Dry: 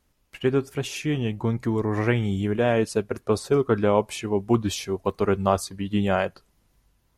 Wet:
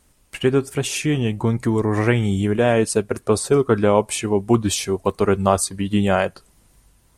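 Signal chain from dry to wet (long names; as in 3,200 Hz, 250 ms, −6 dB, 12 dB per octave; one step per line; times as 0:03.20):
parametric band 8,700 Hz +10.5 dB 0.51 octaves
in parallel at 0 dB: downward compressor, threshold −34 dBFS, peak gain reduction 18 dB
on the sum: level +3 dB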